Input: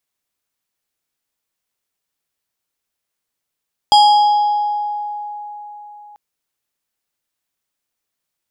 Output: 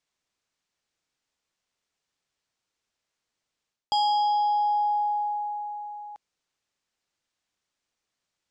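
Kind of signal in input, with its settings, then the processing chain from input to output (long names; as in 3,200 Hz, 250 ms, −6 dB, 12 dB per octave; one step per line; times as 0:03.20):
two-operator FM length 2.24 s, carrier 832 Hz, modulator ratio 4.92, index 0.7, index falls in 1.99 s exponential, decay 4.06 s, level −5 dB
reversed playback
downward compressor 12 to 1, threshold −22 dBFS
reversed playback
low-pass filter 7,400 Hz 24 dB per octave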